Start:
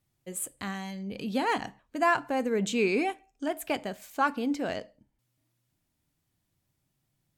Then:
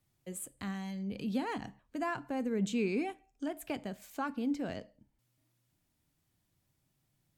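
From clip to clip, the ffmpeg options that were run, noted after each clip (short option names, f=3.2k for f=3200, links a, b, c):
-filter_complex "[0:a]acrossover=split=270[a][b];[b]acompressor=threshold=-55dB:ratio=1.5[c];[a][c]amix=inputs=2:normalize=0"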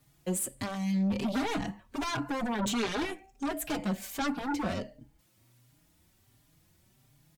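-filter_complex "[0:a]asplit=2[a][b];[b]aeval=exprs='0.0794*sin(PI/2*5.62*val(0)/0.0794)':c=same,volume=-8.5dB[c];[a][c]amix=inputs=2:normalize=0,asplit=2[d][e];[e]adelay=4.5,afreqshift=1.4[f];[d][f]amix=inputs=2:normalize=1,volume=2.5dB"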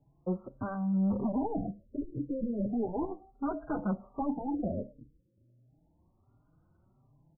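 -af "afftfilt=real='re*lt(b*sr/1024,570*pow(1600/570,0.5+0.5*sin(2*PI*0.34*pts/sr)))':imag='im*lt(b*sr/1024,570*pow(1600/570,0.5+0.5*sin(2*PI*0.34*pts/sr)))':win_size=1024:overlap=0.75"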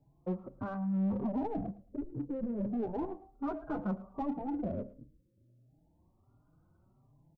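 -filter_complex "[0:a]asplit=2[a][b];[b]asoftclip=type=tanh:threshold=-39.5dB,volume=-5.5dB[c];[a][c]amix=inputs=2:normalize=0,aecho=1:1:110|220:0.1|0.024,volume=-4dB"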